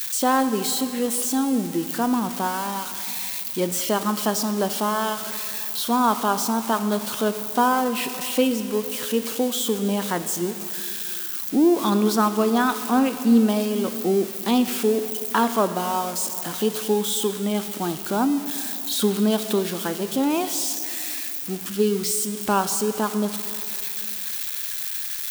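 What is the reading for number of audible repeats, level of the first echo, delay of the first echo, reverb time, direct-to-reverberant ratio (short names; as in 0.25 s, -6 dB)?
none, none, none, 2.9 s, 10.0 dB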